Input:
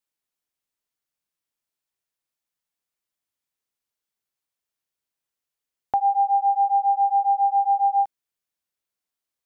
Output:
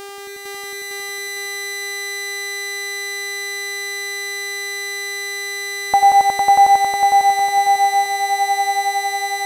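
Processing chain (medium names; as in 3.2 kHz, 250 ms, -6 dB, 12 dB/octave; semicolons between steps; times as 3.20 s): mains buzz 400 Hz, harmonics 39, -41 dBFS -5 dB/octave; echo with a slow build-up 91 ms, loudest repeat 5, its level -3.5 dB; trim +7.5 dB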